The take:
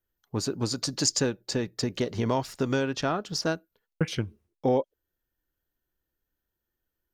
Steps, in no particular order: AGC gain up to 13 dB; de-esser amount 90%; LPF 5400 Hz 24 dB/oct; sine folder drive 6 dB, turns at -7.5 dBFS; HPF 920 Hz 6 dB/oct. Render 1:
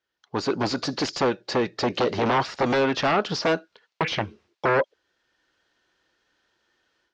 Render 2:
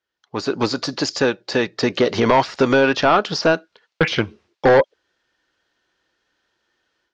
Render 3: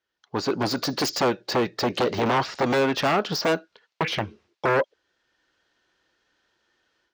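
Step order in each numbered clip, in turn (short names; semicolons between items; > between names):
AGC > sine folder > HPF > de-esser > LPF; HPF > AGC > de-esser > sine folder > LPF; LPF > AGC > sine folder > de-esser > HPF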